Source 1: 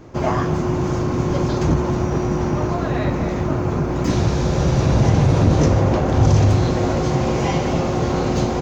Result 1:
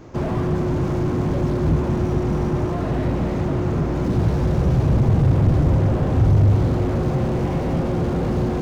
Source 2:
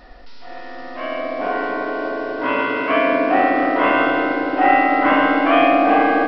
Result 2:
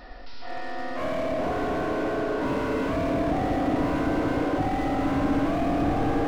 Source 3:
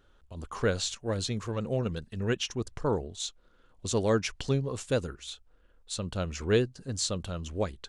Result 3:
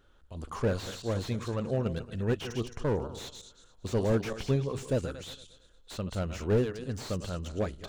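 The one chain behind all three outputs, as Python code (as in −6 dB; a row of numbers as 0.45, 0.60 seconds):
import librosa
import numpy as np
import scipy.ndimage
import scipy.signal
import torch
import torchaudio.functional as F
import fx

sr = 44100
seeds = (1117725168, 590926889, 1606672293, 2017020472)

y = fx.reverse_delay_fb(x, sr, ms=114, feedback_pct=46, wet_db=-12)
y = fx.slew_limit(y, sr, full_power_hz=34.0)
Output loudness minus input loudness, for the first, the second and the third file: −1.5, −9.0, −1.0 LU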